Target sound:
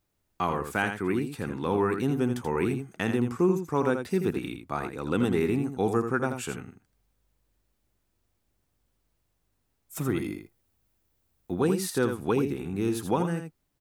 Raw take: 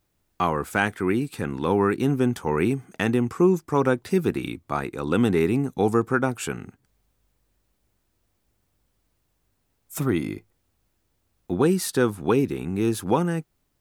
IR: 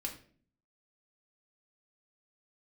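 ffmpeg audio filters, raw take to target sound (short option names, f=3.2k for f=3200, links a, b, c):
-filter_complex "[0:a]asettb=1/sr,asplit=3[a][b][c];[a]atrim=end=10.174[d];[b]atrim=start=10.17:end=11.61,asetpts=PTS-STARTPTS,afade=t=in:d=0.004:c=qsin,afade=t=out:st=1.436:d=0.004:c=qsin,highshelf=f=12k:g=9[e];[c]atrim=start=11.606[f];[d][e]acrossfade=d=0.004:c1=hsin:c2=qsin[g];[g][f]acrossfade=d=0.004:c1=qsin:c2=hsin,aecho=1:1:82:0.422,volume=-5dB"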